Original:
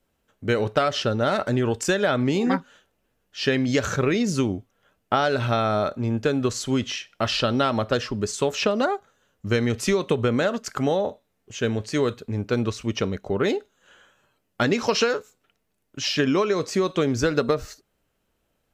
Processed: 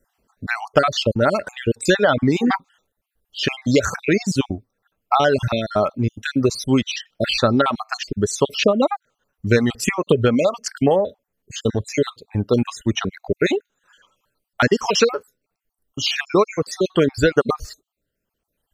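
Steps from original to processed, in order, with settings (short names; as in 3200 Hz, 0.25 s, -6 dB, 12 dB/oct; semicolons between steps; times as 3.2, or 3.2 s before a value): random spectral dropouts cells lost 46%; reverb removal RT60 1.6 s; gain +7 dB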